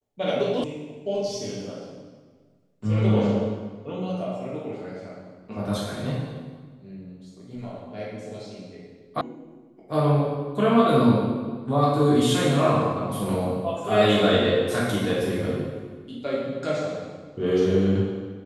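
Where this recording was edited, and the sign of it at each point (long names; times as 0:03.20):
0:00.64: cut off before it has died away
0:09.21: cut off before it has died away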